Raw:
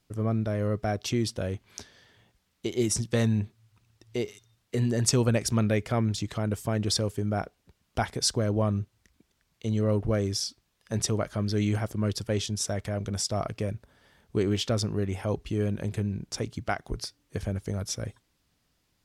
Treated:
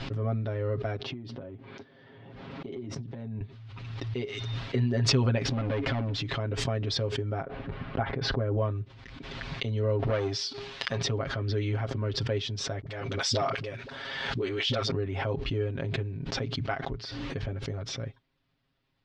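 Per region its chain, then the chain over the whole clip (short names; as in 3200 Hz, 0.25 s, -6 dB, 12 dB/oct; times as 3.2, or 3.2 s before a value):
1.02–3.41 HPF 240 Hz + tilt -4.5 dB/oct + compressor 16:1, threshold -32 dBFS
5.45–6.22 bell 280 Hz +12 dB 0.27 oct + compressor 2.5:1, threshold -32 dBFS + sample leveller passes 3
7.42–8.58 LPF 1800 Hz + notch 940 Hz, Q 22
9.99–11.02 sample leveller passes 2 + tilt +2 dB/oct + de-hum 406.7 Hz, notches 3
12.81–14.91 tilt +3 dB/oct + dispersion highs, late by 57 ms, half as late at 380 Hz + sustainer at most 40 dB/s
whole clip: LPF 4000 Hz 24 dB/oct; comb 7.4 ms, depth 89%; backwards sustainer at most 27 dB/s; gain -5.5 dB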